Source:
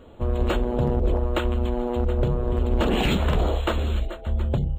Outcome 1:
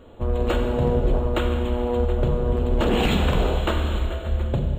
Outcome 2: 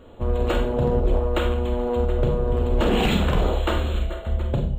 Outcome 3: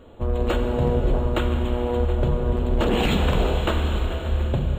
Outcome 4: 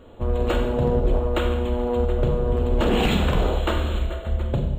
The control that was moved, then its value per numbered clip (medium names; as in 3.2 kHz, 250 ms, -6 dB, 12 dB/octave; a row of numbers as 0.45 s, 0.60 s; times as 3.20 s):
Schroeder reverb, RT60: 2.1 s, 0.46 s, 4.6 s, 0.98 s